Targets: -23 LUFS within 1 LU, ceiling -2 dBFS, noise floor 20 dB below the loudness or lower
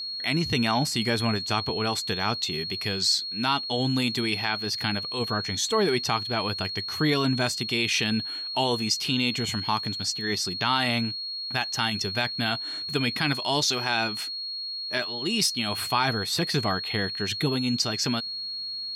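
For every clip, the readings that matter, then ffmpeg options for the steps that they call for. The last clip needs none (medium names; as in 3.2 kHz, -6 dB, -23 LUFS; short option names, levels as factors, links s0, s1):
steady tone 4.3 kHz; tone level -31 dBFS; loudness -25.5 LUFS; peak level -10.0 dBFS; loudness target -23.0 LUFS
-> -af "bandreject=f=4300:w=30"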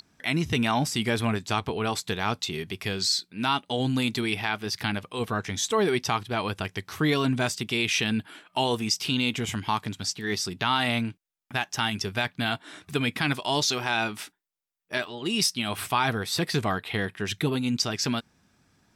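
steady tone not found; loudness -27.0 LUFS; peak level -11.0 dBFS; loudness target -23.0 LUFS
-> -af "volume=1.58"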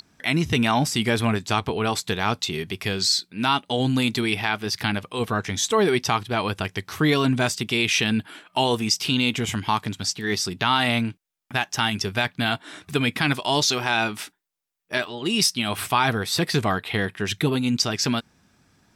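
loudness -23.0 LUFS; peak level -7.0 dBFS; noise floor -68 dBFS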